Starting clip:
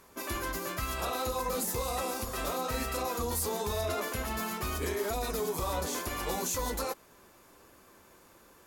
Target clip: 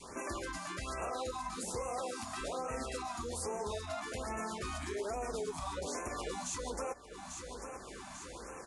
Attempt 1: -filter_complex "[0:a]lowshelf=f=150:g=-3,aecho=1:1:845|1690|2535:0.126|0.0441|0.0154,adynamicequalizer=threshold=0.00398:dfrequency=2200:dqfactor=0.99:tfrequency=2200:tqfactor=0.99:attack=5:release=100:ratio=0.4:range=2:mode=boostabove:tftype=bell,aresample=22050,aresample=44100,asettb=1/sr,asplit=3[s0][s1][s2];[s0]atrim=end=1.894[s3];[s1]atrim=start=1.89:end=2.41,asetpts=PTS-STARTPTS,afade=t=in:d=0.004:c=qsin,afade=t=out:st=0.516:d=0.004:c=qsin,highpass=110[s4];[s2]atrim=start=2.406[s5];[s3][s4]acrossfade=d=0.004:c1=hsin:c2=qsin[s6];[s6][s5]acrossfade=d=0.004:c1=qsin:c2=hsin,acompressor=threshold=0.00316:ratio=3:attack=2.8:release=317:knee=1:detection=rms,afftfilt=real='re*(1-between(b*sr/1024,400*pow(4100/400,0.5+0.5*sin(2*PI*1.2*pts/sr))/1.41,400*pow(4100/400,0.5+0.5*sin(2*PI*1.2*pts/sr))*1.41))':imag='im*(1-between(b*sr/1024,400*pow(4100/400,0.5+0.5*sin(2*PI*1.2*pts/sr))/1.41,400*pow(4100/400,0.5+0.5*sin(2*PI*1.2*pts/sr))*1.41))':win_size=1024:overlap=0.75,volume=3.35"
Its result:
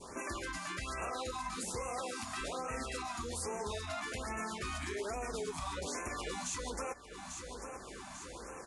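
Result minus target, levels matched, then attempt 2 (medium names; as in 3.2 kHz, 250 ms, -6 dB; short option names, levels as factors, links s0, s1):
2 kHz band +3.0 dB
-filter_complex "[0:a]lowshelf=f=150:g=-3,aecho=1:1:845|1690|2535:0.126|0.0441|0.0154,adynamicequalizer=threshold=0.00398:dfrequency=610:dqfactor=0.99:tfrequency=610:tqfactor=0.99:attack=5:release=100:ratio=0.4:range=2:mode=boostabove:tftype=bell,aresample=22050,aresample=44100,asettb=1/sr,asplit=3[s0][s1][s2];[s0]atrim=end=1.894[s3];[s1]atrim=start=1.89:end=2.41,asetpts=PTS-STARTPTS,afade=t=in:d=0.004:c=qsin,afade=t=out:st=0.516:d=0.004:c=qsin,highpass=110[s4];[s2]atrim=start=2.406[s5];[s3][s4]acrossfade=d=0.004:c1=hsin:c2=qsin[s6];[s6][s5]acrossfade=d=0.004:c1=qsin:c2=hsin,acompressor=threshold=0.00316:ratio=3:attack=2.8:release=317:knee=1:detection=rms,afftfilt=real='re*(1-between(b*sr/1024,400*pow(4100/400,0.5+0.5*sin(2*PI*1.2*pts/sr))/1.41,400*pow(4100/400,0.5+0.5*sin(2*PI*1.2*pts/sr))*1.41))':imag='im*(1-between(b*sr/1024,400*pow(4100/400,0.5+0.5*sin(2*PI*1.2*pts/sr))/1.41,400*pow(4100/400,0.5+0.5*sin(2*PI*1.2*pts/sr))*1.41))':win_size=1024:overlap=0.75,volume=3.35"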